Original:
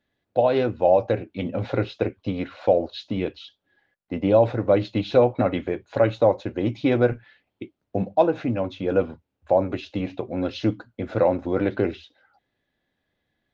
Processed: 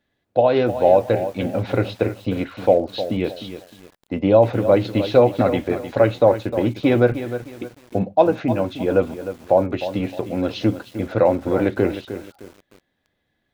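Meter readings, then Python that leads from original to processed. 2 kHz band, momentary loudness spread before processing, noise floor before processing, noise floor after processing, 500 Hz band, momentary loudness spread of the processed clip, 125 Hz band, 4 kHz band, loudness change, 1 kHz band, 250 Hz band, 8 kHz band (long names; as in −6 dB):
+4.0 dB, 11 LU, −80 dBFS, −73 dBFS, +4.0 dB, 13 LU, +4.0 dB, +4.0 dB, +3.5 dB, +4.0 dB, +4.0 dB, can't be measured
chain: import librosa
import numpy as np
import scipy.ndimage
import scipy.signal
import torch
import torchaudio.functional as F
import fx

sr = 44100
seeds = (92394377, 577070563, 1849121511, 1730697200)

y = fx.echo_crushed(x, sr, ms=307, feedback_pct=35, bits=7, wet_db=-11)
y = y * librosa.db_to_amplitude(3.5)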